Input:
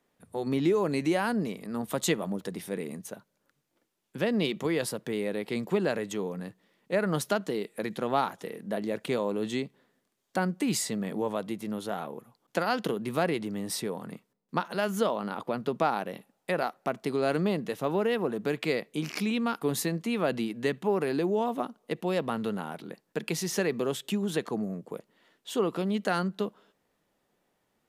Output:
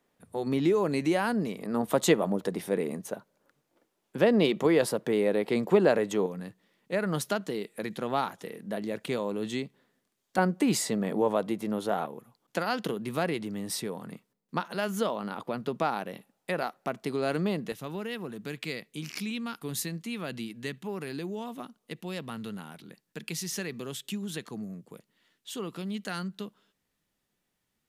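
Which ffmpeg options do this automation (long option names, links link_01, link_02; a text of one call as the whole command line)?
ffmpeg -i in.wav -af "asetnsamples=nb_out_samples=441:pad=0,asendcmd='1.59 equalizer g 7;6.26 equalizer g -2.5;10.38 equalizer g 5.5;12.06 equalizer g -2.5;17.72 equalizer g -12',equalizer=frequency=600:width_type=o:width=2.7:gain=0.5" out.wav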